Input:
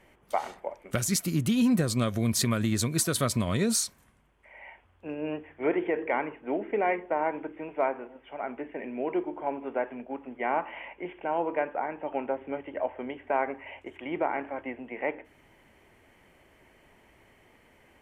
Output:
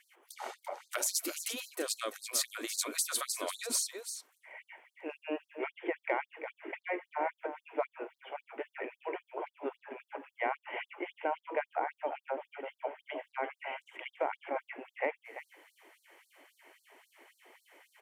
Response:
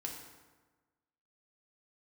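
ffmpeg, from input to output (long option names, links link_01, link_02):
-af "highpass=170,highshelf=frequency=12000:gain=4.5,bandreject=frequency=60:width_type=h:width=6,bandreject=frequency=120:width_type=h:width=6,bandreject=frequency=180:width_type=h:width=6,bandreject=frequency=240:width_type=h:width=6,acompressor=threshold=-29dB:ratio=6,aecho=1:1:340:0.316,afftfilt=real='re*gte(b*sr/1024,250*pow(4000/250,0.5+0.5*sin(2*PI*3.7*pts/sr)))':imag='im*gte(b*sr/1024,250*pow(4000/250,0.5+0.5*sin(2*PI*3.7*pts/sr)))':win_size=1024:overlap=0.75,volume=1.5dB"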